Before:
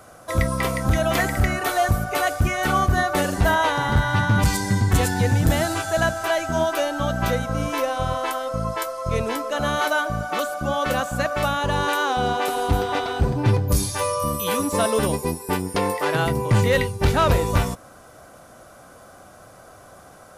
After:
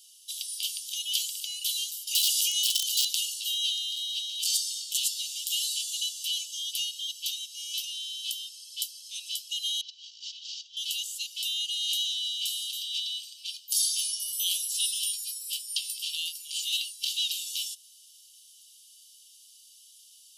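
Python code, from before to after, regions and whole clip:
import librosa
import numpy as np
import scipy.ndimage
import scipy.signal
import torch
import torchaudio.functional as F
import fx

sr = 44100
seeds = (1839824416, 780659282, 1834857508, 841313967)

y = fx.chain(x, sr, fx.highpass(hz=1200.0, slope=12),
    fx.overflow_wrap(gain_db=17.5),
    fx.env_flatten(amount_pct=100), at=(2.07, 3.15))
y = fx.chain(y, sr, fx.cvsd(bps=32000),
    fx.over_compress(threshold_db=-30.0, ratio=-0.5), at=(9.81, 10.77))
y = scipy.signal.sosfilt(scipy.signal.cheby1(8, 1.0, 2800.0, 'highpass', fs=sr, output='sos'), y)
y = fx.high_shelf(y, sr, hz=7500.0, db=-6.5)
y = y + 0.37 * np.pad(y, (int(1.3 * sr / 1000.0), 0))[:len(y)]
y = y * librosa.db_to_amplitude(5.5)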